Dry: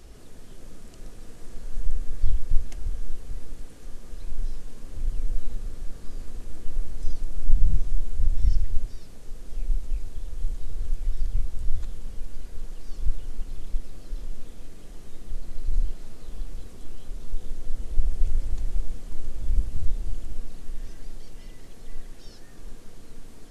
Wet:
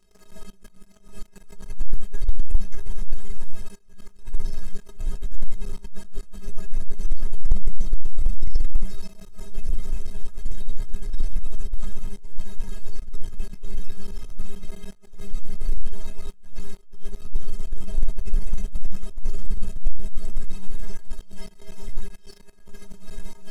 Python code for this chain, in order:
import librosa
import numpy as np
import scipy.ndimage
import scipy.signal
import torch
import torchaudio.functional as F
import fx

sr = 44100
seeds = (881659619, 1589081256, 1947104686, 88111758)

y = fx.notch(x, sr, hz=580.0, q=12.0)
y = fx.stiff_resonator(y, sr, f0_hz=190.0, decay_s=0.34, stiffness=0.03)
y = fx.leveller(y, sr, passes=3)
y = fx.attack_slew(y, sr, db_per_s=140.0)
y = y * 10.0 ** (8.0 / 20.0)